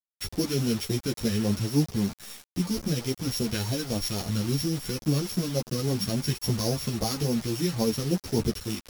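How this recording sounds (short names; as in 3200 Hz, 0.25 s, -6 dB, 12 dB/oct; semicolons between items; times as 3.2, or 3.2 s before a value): a buzz of ramps at a fixed pitch in blocks of 8 samples; phasing stages 2, 3.6 Hz, lowest notch 740–1500 Hz; a quantiser's noise floor 6-bit, dither none; a shimmering, thickened sound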